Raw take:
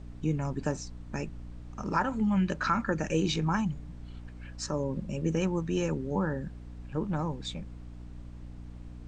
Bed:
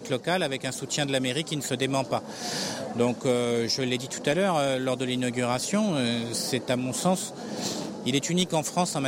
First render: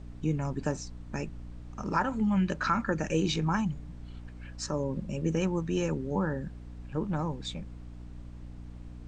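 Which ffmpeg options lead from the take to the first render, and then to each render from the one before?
-af anull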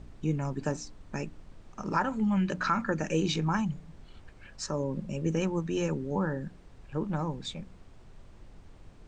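-af "bandreject=f=60:t=h:w=4,bandreject=f=120:t=h:w=4,bandreject=f=180:t=h:w=4,bandreject=f=240:t=h:w=4,bandreject=f=300:t=h:w=4"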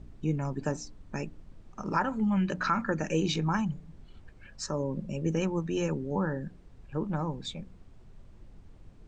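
-af "afftdn=nr=6:nf=-53"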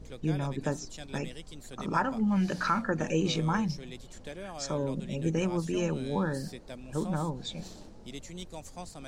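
-filter_complex "[1:a]volume=-18dB[a];[0:a][a]amix=inputs=2:normalize=0"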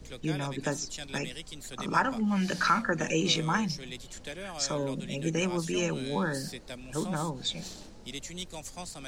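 -filter_complex "[0:a]acrossover=split=150|530|1500[a][b][c][d];[a]alimiter=level_in=17dB:limit=-24dB:level=0:latency=1,volume=-17dB[e];[d]acontrast=84[f];[e][b][c][f]amix=inputs=4:normalize=0"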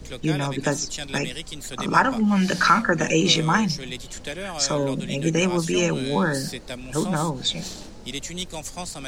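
-af "volume=8dB"

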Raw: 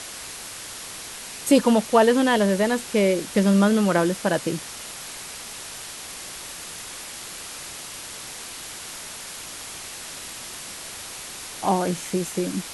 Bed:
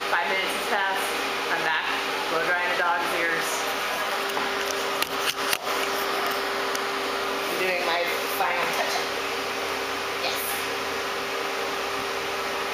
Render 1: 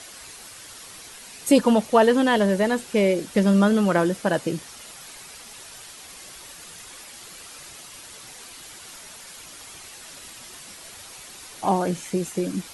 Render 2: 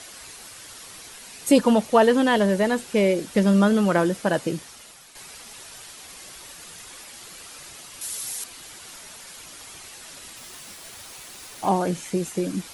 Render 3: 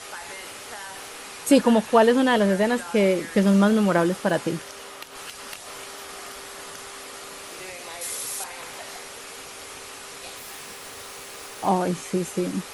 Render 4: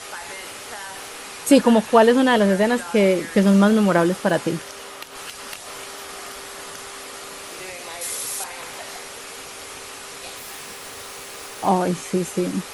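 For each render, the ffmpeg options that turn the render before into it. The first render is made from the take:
-af "afftdn=nr=8:nf=-37"
-filter_complex "[0:a]asettb=1/sr,asplit=3[a][b][c];[a]atrim=end=8.014[d];[b]atrim=start=8.01:end=8.44,asetpts=PTS-STARTPTS,afade=t=in:d=0.004:c=qsin,afade=t=out:st=0.426:d=0.004:c=qsin,aemphasis=mode=production:type=75fm[e];[c]atrim=start=8.436[f];[d][e]acrossfade=d=0.004:c1=hsin:c2=qsin[g];[g][f]acrossfade=d=0.004:c1=qsin:c2=hsin,asettb=1/sr,asplit=3[h][i][j];[h]atrim=end=10.374[k];[i]atrim=start=10.37:end=11.69,asetpts=PTS-STARTPTS,afade=t=in:d=0.004:c=qsin,afade=t=out:st=1.316:d=0.004:c=qsin,acrusher=bits=6:mix=0:aa=0.5[l];[j]atrim=start=11.686[m];[k][l]acrossfade=d=0.004:c1=hsin:c2=qsin[n];[n][m]acrossfade=d=0.004:c1=qsin:c2=hsin,asplit=2[o][p];[o]atrim=end=5.15,asetpts=PTS-STARTPTS,afade=t=out:st=4.48:d=0.67:silence=0.354813[q];[p]atrim=start=5.15,asetpts=PTS-STARTPTS,afade=t=in:d=0.004:c=hsin:silence=0.354813[r];[q][r]concat=n=2:v=0:a=1"
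-filter_complex "[1:a]volume=-14.5dB[a];[0:a][a]amix=inputs=2:normalize=0"
-af "volume=3dB"

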